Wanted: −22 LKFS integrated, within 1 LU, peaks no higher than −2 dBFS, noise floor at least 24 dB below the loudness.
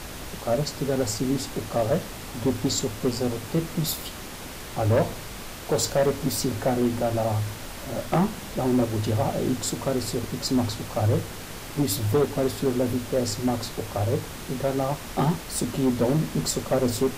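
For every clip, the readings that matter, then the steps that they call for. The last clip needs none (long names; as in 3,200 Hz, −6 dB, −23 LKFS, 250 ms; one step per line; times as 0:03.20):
share of clipped samples 1.2%; peaks flattened at −16.0 dBFS; background noise floor −38 dBFS; target noise floor −50 dBFS; integrated loudness −26.0 LKFS; sample peak −16.0 dBFS; target loudness −22.0 LKFS
→ clipped peaks rebuilt −16 dBFS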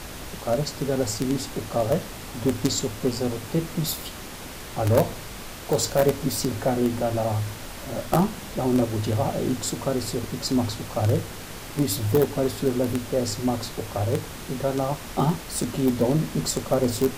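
share of clipped samples 0.0%; background noise floor −38 dBFS; target noise floor −50 dBFS
→ noise reduction from a noise print 12 dB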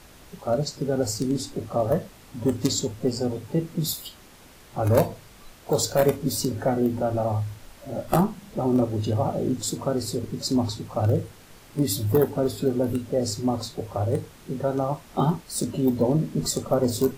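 background noise floor −50 dBFS; integrated loudness −25.5 LKFS; sample peak −7.0 dBFS; target loudness −22.0 LKFS
→ level +3.5 dB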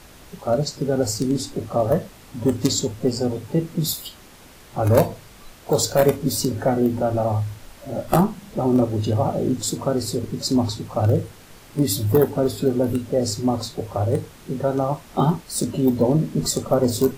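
integrated loudness −22.0 LKFS; sample peak −3.5 dBFS; background noise floor −46 dBFS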